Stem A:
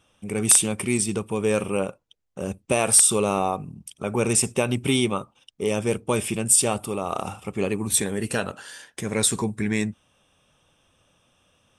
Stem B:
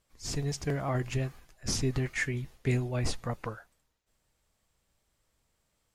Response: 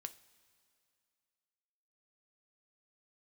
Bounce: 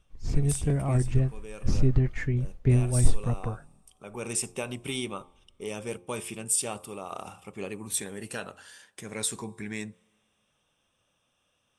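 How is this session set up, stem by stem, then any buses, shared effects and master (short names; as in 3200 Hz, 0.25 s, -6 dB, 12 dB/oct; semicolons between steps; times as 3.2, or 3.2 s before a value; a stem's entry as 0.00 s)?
-10.5 dB, 0.00 s, send -7.5 dB, low shelf 470 Hz -4.5 dB; de-hum 88.56 Hz, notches 14; overloaded stage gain 4.5 dB; auto duck -16 dB, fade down 0.20 s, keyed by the second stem
-2.5 dB, 0.00 s, no send, tilt -3.5 dB/oct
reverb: on, pre-delay 3 ms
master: dry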